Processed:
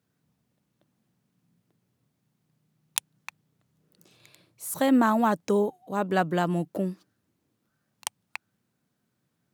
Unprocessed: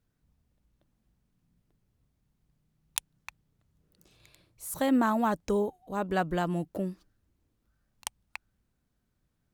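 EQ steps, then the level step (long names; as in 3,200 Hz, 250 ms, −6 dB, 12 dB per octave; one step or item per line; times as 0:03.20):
high-pass filter 120 Hz 24 dB per octave
+4.0 dB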